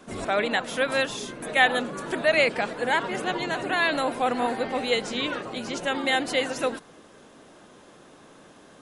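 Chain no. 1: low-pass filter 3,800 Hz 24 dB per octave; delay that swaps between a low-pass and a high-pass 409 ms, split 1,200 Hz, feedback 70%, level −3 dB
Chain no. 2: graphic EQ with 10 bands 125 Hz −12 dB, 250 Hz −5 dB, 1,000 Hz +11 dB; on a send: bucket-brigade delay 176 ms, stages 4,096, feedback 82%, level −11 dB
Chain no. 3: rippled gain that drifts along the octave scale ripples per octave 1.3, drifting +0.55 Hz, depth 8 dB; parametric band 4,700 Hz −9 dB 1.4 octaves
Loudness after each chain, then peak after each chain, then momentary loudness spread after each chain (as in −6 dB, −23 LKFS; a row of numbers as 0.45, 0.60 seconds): −24.5, −21.0, −25.5 LKFS; −6.0, −1.0, −6.5 dBFS; 14, 16, 8 LU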